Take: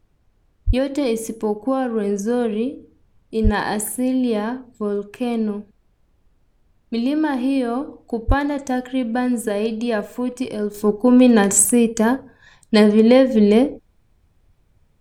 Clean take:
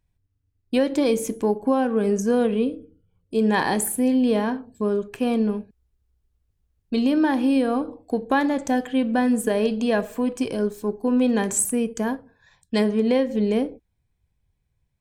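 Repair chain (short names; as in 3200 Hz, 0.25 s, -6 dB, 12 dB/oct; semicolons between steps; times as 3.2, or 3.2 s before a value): 0.66–0.78 HPF 140 Hz 24 dB/oct; 3.43–3.55 HPF 140 Hz 24 dB/oct; 8.27–8.39 HPF 140 Hz 24 dB/oct; expander -52 dBFS, range -21 dB; 10.74 gain correction -8 dB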